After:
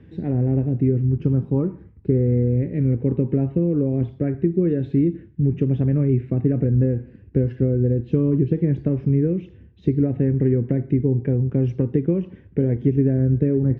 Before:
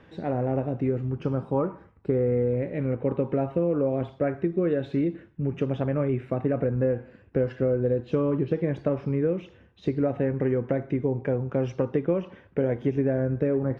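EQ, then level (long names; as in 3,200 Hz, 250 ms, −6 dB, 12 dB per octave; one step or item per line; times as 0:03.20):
high-pass filter 55 Hz
spectral tilt −3.5 dB per octave
flat-topped bell 860 Hz −10.5 dB
0.0 dB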